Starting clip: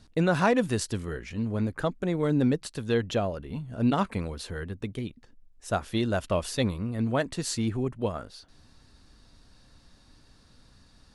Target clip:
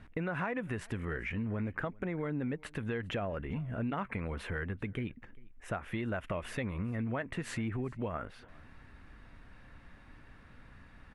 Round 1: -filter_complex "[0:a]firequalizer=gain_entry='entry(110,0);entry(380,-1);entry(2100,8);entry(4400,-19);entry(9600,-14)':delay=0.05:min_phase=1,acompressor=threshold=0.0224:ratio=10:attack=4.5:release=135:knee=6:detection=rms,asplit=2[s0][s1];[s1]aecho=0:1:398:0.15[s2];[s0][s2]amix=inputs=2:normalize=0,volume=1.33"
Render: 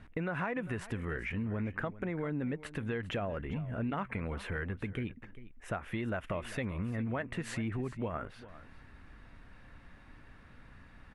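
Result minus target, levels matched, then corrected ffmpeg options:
echo-to-direct +8.5 dB
-filter_complex "[0:a]firequalizer=gain_entry='entry(110,0);entry(380,-1);entry(2100,8);entry(4400,-19);entry(9600,-14)':delay=0.05:min_phase=1,acompressor=threshold=0.0224:ratio=10:attack=4.5:release=135:knee=6:detection=rms,asplit=2[s0][s1];[s1]aecho=0:1:398:0.0562[s2];[s0][s2]amix=inputs=2:normalize=0,volume=1.33"

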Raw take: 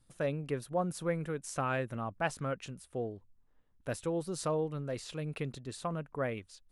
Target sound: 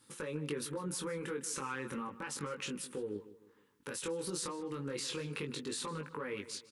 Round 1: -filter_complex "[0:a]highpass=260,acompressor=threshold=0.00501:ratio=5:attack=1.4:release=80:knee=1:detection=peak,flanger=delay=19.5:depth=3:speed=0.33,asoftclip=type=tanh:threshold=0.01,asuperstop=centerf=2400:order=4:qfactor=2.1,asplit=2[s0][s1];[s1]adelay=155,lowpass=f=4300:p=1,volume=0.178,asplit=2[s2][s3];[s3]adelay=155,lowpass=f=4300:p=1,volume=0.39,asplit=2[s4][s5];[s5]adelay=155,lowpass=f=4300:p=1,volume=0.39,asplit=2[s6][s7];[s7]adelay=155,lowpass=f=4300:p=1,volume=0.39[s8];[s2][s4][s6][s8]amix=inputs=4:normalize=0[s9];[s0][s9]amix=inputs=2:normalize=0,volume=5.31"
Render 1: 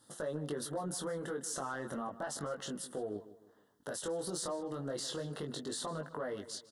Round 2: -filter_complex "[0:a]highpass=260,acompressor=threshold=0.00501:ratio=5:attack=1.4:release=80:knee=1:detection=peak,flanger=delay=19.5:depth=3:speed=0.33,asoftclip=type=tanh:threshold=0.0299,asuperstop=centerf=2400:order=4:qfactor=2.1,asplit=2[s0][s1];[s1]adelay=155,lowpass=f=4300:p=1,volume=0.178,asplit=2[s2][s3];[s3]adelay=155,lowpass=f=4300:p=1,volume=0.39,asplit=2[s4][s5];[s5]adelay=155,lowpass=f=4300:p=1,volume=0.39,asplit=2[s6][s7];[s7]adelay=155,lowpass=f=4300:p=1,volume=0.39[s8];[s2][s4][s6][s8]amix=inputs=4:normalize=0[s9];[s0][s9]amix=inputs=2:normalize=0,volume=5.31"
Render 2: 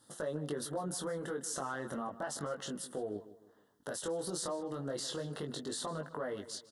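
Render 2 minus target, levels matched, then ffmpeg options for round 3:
2 kHz band -3.0 dB
-filter_complex "[0:a]highpass=260,acompressor=threshold=0.00501:ratio=5:attack=1.4:release=80:knee=1:detection=peak,flanger=delay=19.5:depth=3:speed=0.33,asoftclip=type=tanh:threshold=0.0299,asuperstop=centerf=670:order=4:qfactor=2.1,asplit=2[s0][s1];[s1]adelay=155,lowpass=f=4300:p=1,volume=0.178,asplit=2[s2][s3];[s3]adelay=155,lowpass=f=4300:p=1,volume=0.39,asplit=2[s4][s5];[s5]adelay=155,lowpass=f=4300:p=1,volume=0.39,asplit=2[s6][s7];[s7]adelay=155,lowpass=f=4300:p=1,volume=0.39[s8];[s2][s4][s6][s8]amix=inputs=4:normalize=0[s9];[s0][s9]amix=inputs=2:normalize=0,volume=5.31"

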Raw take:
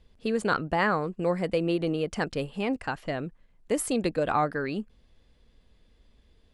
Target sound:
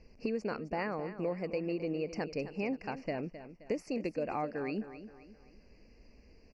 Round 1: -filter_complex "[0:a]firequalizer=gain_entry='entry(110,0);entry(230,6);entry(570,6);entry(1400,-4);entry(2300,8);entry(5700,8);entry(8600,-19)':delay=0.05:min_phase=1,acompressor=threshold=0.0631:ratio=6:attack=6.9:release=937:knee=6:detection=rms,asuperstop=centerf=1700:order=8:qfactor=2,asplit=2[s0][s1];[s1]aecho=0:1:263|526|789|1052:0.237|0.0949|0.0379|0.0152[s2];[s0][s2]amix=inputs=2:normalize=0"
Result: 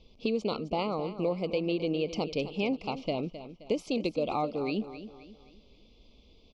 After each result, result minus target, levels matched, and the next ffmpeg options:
4 kHz band +8.5 dB; compression: peak gain reduction -5 dB
-filter_complex "[0:a]firequalizer=gain_entry='entry(110,0);entry(230,6);entry(570,6);entry(1400,-4);entry(2300,8);entry(5700,8);entry(8600,-19)':delay=0.05:min_phase=1,acompressor=threshold=0.0631:ratio=6:attack=6.9:release=937:knee=6:detection=rms,asuperstop=centerf=3500:order=8:qfactor=2,asplit=2[s0][s1];[s1]aecho=0:1:263|526|789|1052:0.237|0.0949|0.0379|0.0152[s2];[s0][s2]amix=inputs=2:normalize=0"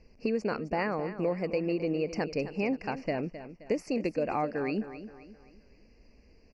compression: peak gain reduction -5 dB
-filter_complex "[0:a]firequalizer=gain_entry='entry(110,0);entry(230,6);entry(570,6);entry(1400,-4);entry(2300,8);entry(5700,8);entry(8600,-19)':delay=0.05:min_phase=1,acompressor=threshold=0.0316:ratio=6:attack=6.9:release=937:knee=6:detection=rms,asuperstop=centerf=3500:order=8:qfactor=2,asplit=2[s0][s1];[s1]aecho=0:1:263|526|789|1052:0.237|0.0949|0.0379|0.0152[s2];[s0][s2]amix=inputs=2:normalize=0"

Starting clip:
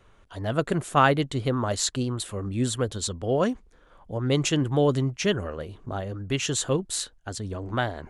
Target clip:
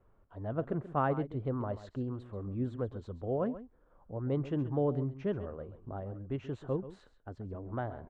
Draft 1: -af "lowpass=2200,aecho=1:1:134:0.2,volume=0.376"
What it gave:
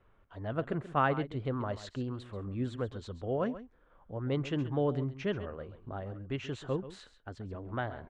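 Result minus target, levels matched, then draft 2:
2 kHz band +7.0 dB
-af "lowpass=1000,aecho=1:1:134:0.2,volume=0.376"

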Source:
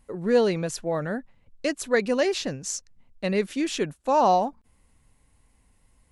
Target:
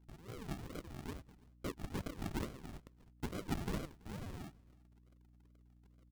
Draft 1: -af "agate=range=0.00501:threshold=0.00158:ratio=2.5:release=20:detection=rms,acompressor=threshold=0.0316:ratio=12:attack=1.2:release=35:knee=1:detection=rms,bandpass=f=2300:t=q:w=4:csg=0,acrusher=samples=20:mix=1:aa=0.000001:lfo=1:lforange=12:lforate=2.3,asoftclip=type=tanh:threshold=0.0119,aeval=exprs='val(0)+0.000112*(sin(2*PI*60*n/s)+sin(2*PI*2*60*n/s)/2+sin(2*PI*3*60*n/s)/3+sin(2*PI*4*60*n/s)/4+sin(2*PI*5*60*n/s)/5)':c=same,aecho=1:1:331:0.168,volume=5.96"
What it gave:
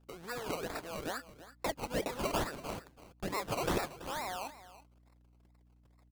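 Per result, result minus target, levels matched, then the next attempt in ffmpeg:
decimation with a swept rate: distortion -18 dB; compression: peak gain reduction -7 dB; echo-to-direct +10 dB
-af "agate=range=0.00501:threshold=0.00158:ratio=2.5:release=20:detection=rms,acompressor=threshold=0.0316:ratio=12:attack=1.2:release=35:knee=1:detection=rms,bandpass=f=2300:t=q:w=4:csg=0,acrusher=samples=69:mix=1:aa=0.000001:lfo=1:lforange=41.4:lforate=2.3,asoftclip=type=tanh:threshold=0.0119,aeval=exprs='val(0)+0.000112*(sin(2*PI*60*n/s)+sin(2*PI*2*60*n/s)/2+sin(2*PI*3*60*n/s)/3+sin(2*PI*4*60*n/s)/4+sin(2*PI*5*60*n/s)/5)':c=same,aecho=1:1:331:0.168,volume=5.96"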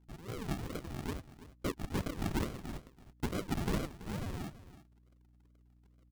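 compression: peak gain reduction -7 dB; echo-to-direct +10 dB
-af "agate=range=0.00501:threshold=0.00158:ratio=2.5:release=20:detection=rms,acompressor=threshold=0.0133:ratio=12:attack=1.2:release=35:knee=1:detection=rms,bandpass=f=2300:t=q:w=4:csg=0,acrusher=samples=69:mix=1:aa=0.000001:lfo=1:lforange=41.4:lforate=2.3,asoftclip=type=tanh:threshold=0.0119,aeval=exprs='val(0)+0.000112*(sin(2*PI*60*n/s)+sin(2*PI*2*60*n/s)/2+sin(2*PI*3*60*n/s)/3+sin(2*PI*4*60*n/s)/4+sin(2*PI*5*60*n/s)/5)':c=same,aecho=1:1:331:0.168,volume=5.96"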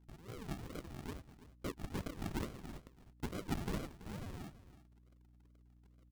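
echo-to-direct +10 dB
-af "agate=range=0.00501:threshold=0.00158:ratio=2.5:release=20:detection=rms,acompressor=threshold=0.0133:ratio=12:attack=1.2:release=35:knee=1:detection=rms,bandpass=f=2300:t=q:w=4:csg=0,acrusher=samples=69:mix=1:aa=0.000001:lfo=1:lforange=41.4:lforate=2.3,asoftclip=type=tanh:threshold=0.0119,aeval=exprs='val(0)+0.000112*(sin(2*PI*60*n/s)+sin(2*PI*2*60*n/s)/2+sin(2*PI*3*60*n/s)/3+sin(2*PI*4*60*n/s)/4+sin(2*PI*5*60*n/s)/5)':c=same,aecho=1:1:331:0.0531,volume=5.96"

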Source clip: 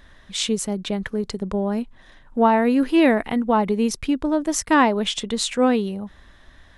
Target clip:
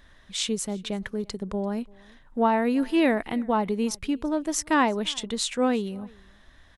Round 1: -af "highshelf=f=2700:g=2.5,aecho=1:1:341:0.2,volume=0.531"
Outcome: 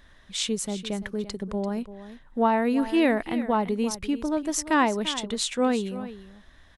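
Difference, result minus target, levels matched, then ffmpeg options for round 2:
echo-to-direct +12 dB
-af "highshelf=f=2700:g=2.5,aecho=1:1:341:0.0501,volume=0.531"

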